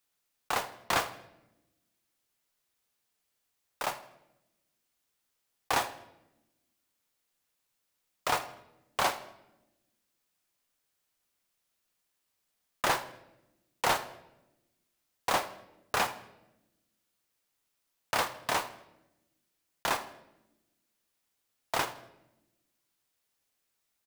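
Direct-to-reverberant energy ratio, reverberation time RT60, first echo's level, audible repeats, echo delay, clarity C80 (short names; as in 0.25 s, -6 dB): 10.5 dB, 0.95 s, -19.0 dB, 2, 80 ms, 15.0 dB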